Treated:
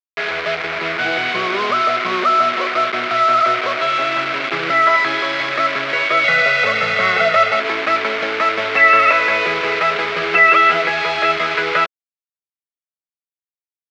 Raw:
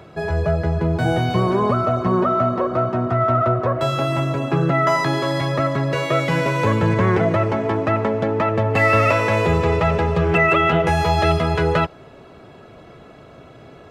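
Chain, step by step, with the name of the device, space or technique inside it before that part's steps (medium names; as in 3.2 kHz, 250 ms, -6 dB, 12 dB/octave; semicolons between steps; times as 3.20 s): hand-held game console (bit crusher 4-bit; cabinet simulation 490–4200 Hz, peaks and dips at 530 Hz -4 dB, 870 Hz -8 dB, 1.4 kHz +6 dB, 2.2 kHz +9 dB); 6.24–7.60 s: comb 1.5 ms, depth 89%; trim +2.5 dB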